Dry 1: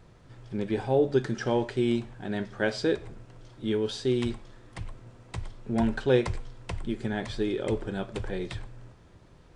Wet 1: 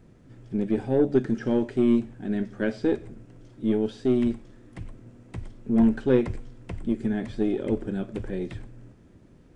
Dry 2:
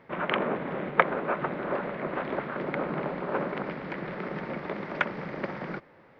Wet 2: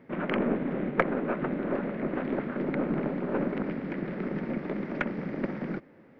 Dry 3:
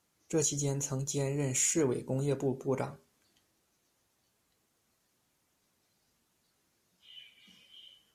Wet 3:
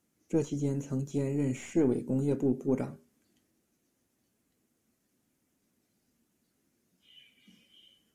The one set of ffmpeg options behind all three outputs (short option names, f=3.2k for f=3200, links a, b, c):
-filter_complex "[0:a]equalizer=f=250:t=o:w=1:g=10,equalizer=f=1k:t=o:w=1:g=-6,equalizer=f=4k:t=o:w=1:g=-6,aeval=exprs='0.596*(cos(1*acos(clip(val(0)/0.596,-1,1)))-cos(1*PI/2))+0.0211*(cos(8*acos(clip(val(0)/0.596,-1,1)))-cos(8*PI/2))':c=same,acrossover=split=3500[a][b];[b]acompressor=threshold=-52dB:ratio=4:attack=1:release=60[c];[a][c]amix=inputs=2:normalize=0,volume=-1.5dB"